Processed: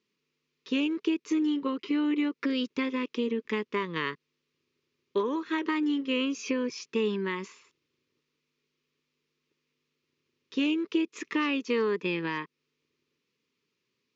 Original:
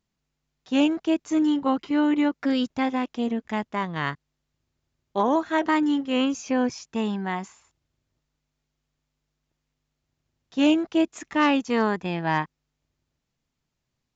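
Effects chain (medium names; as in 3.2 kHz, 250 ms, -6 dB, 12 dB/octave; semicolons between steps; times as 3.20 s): compression, threshold -28 dBFS, peak gain reduction 12 dB; Butterworth band-stop 720 Hz, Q 1.4; cabinet simulation 260–5700 Hz, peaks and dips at 420 Hz +8 dB, 1.5 kHz -6 dB, 2.5 kHz +5 dB; trim +4 dB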